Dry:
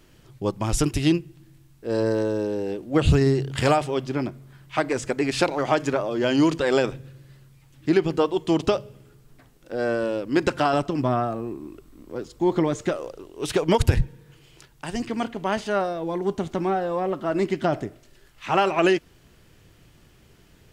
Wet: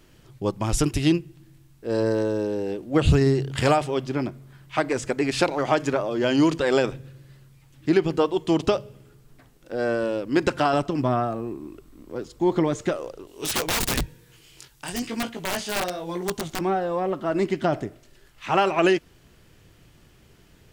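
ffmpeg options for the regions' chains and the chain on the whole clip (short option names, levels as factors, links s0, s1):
-filter_complex "[0:a]asettb=1/sr,asplit=3[s0][s1][s2];[s0]atrim=end=13.274[s3];[s1]atrim=start=13.27:end=16.61,asetpts=PTS-STARTPTS,afade=t=in:d=0.004:c=qsin,afade=t=out:st=3.336:d=0.004:c=qsin,highshelf=f=2600:g=11,flanger=delay=17:depth=6.4:speed=1,aeval=exprs='(mod(8.41*val(0)+1,2)-1)/8.41':c=same[s4];[s2]atrim=start=16.606[s5];[s3][s4]acrossfade=d=0.004:c1=hsin:c2=qsin[s6];[s6][s5]acrossfade=d=0.004:c1=qsin:c2=hsin"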